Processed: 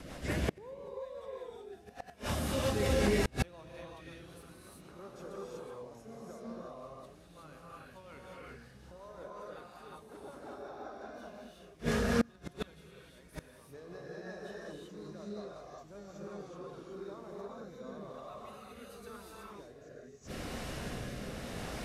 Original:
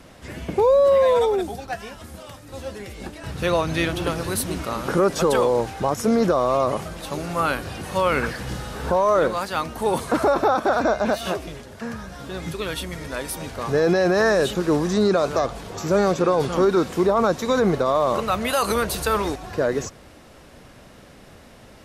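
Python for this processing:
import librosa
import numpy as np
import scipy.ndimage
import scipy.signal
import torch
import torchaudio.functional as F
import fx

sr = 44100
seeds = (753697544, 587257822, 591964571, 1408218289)

y = fx.rotary_switch(x, sr, hz=5.5, then_hz=0.85, switch_at_s=16.36)
y = fx.rev_gated(y, sr, seeds[0], gate_ms=400, shape='rising', drr_db=-5.5)
y = fx.gate_flip(y, sr, shuts_db=-18.0, range_db=-32)
y = y * librosa.db_to_amplitude(1.5)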